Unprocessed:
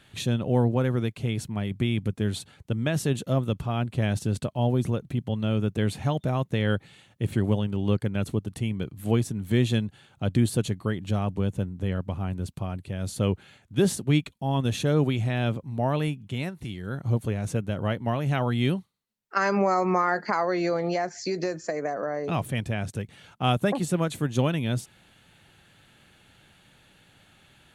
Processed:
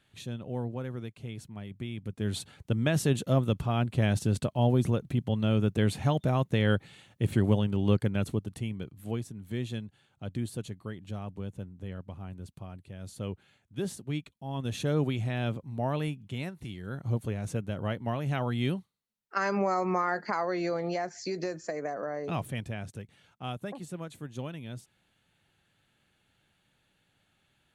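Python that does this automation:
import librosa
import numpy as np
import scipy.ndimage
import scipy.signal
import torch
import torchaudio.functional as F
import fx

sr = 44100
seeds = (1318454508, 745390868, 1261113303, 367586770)

y = fx.gain(x, sr, db=fx.line((2.0, -12.0), (2.4, -0.5), (8.05, -0.5), (9.28, -11.5), (14.43, -11.5), (14.83, -5.0), (22.36, -5.0), (23.55, -14.0)))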